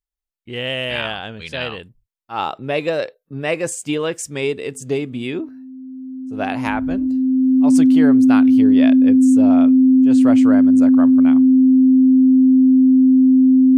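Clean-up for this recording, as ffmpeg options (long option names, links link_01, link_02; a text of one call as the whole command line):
ffmpeg -i in.wav -af "bandreject=frequency=260:width=30" out.wav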